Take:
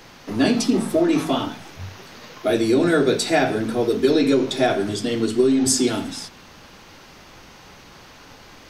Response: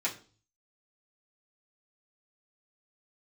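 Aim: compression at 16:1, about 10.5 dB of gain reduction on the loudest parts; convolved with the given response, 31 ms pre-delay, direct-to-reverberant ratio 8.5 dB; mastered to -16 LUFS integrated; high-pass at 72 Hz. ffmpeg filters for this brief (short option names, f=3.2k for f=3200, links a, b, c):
-filter_complex "[0:a]highpass=72,acompressor=threshold=-23dB:ratio=16,asplit=2[a][b];[1:a]atrim=start_sample=2205,adelay=31[c];[b][c]afir=irnorm=-1:irlink=0,volume=-14.5dB[d];[a][d]amix=inputs=2:normalize=0,volume=11.5dB"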